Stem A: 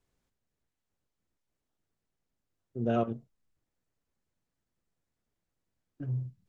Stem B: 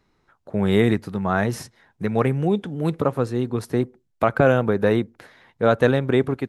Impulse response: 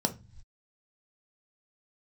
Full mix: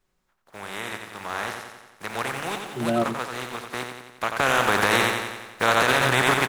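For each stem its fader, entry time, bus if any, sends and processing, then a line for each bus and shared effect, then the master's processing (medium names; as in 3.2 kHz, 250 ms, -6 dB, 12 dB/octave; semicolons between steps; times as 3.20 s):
+2.5 dB, 0.00 s, no send, no echo send, comb 5.4 ms, depth 78%
0.80 s -23.5 dB -> 1.46 s -16.5 dB -> 4.23 s -16.5 dB -> 4.83 s -4.5 dB, 0.00 s, no send, echo send -6 dB, spectral contrast reduction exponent 0.37; peaking EQ 1.2 kHz +11 dB 2.7 oct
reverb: none
echo: feedback delay 89 ms, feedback 59%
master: peak limiter -7 dBFS, peak gain reduction 10.5 dB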